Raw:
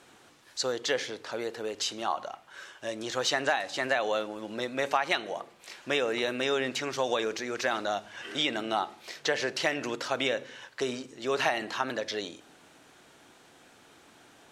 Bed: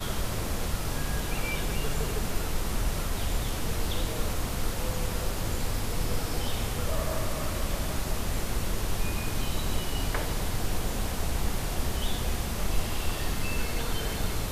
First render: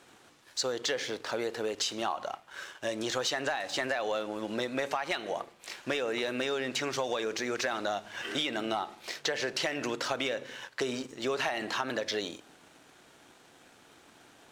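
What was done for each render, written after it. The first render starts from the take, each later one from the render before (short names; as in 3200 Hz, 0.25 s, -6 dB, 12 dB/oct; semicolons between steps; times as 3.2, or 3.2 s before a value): sample leveller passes 1; compressor, threshold -28 dBFS, peak gain reduction 9 dB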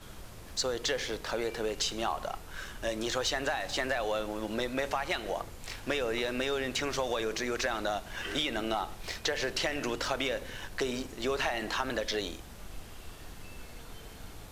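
add bed -17 dB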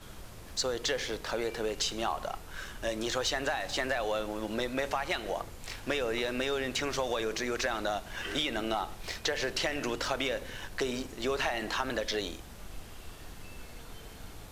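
nothing audible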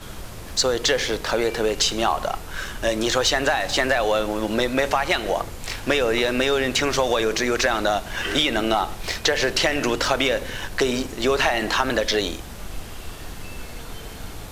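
gain +11 dB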